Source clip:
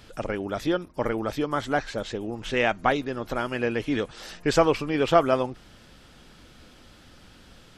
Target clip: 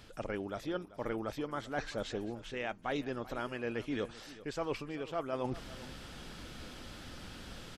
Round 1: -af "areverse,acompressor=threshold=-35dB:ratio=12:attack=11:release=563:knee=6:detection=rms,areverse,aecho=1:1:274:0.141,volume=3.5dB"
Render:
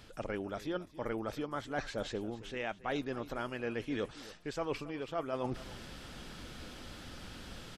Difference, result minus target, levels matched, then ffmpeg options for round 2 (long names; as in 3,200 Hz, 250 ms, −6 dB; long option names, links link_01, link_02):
echo 115 ms early
-af "areverse,acompressor=threshold=-35dB:ratio=12:attack=11:release=563:knee=6:detection=rms,areverse,aecho=1:1:389:0.141,volume=3.5dB"